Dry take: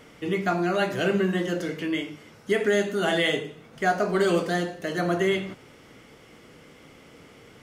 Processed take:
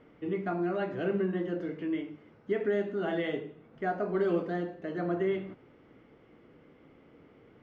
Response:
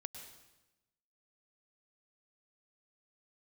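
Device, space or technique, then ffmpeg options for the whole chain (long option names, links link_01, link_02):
phone in a pocket: -af "lowpass=3000,equalizer=frequency=320:width_type=o:width=0.84:gain=4.5,highshelf=frequency=2200:gain=-10,volume=-8dB"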